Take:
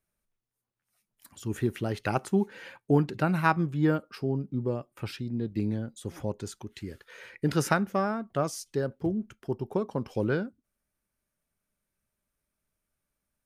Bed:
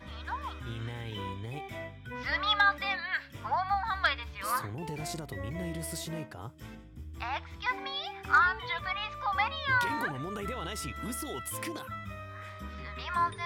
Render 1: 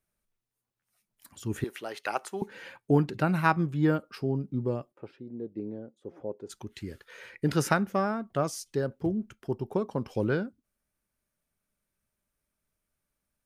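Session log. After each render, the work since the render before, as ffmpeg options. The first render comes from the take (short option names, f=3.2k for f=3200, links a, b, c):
-filter_complex "[0:a]asettb=1/sr,asplit=3[a][b][c];[a]atrim=end=1.644[d];[b]atrim=start=1.64:end=2.42,asetpts=PTS-STARTPTS,afade=t=in:d=0.004:c=qsin,afade=t=out:st=0.776:d=0.004:c=qsin,highpass=580[e];[c]atrim=start=2.416[f];[d][e]acrossfade=d=0.004:c1=hsin:c2=qsin[g];[g][f]acrossfade=d=0.004:c1=qsin:c2=hsin,asplit=3[h][i][j];[h]afade=t=out:st=4.91:d=0.02[k];[i]bandpass=f=460:t=q:w=1.6,afade=t=in:st=4.91:d=0.02,afade=t=out:st=6.49:d=0.02[l];[j]afade=t=in:st=6.49:d=0.02[m];[k][l][m]amix=inputs=3:normalize=0"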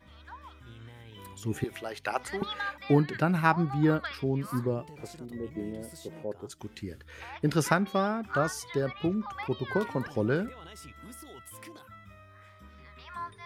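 -filter_complex "[1:a]volume=-10dB[a];[0:a][a]amix=inputs=2:normalize=0"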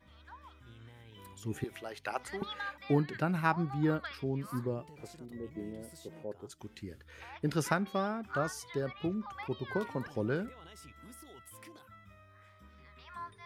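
-af "volume=-5.5dB"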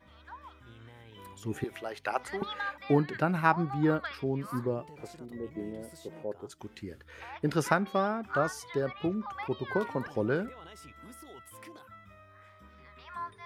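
-af "equalizer=f=790:w=0.34:g=5.5"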